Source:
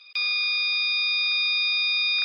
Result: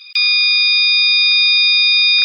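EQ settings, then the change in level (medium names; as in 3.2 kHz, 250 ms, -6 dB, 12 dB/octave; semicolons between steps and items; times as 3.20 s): high-pass 1.2 kHz 24 dB/octave; tilt EQ +3.5 dB/octave; +5.5 dB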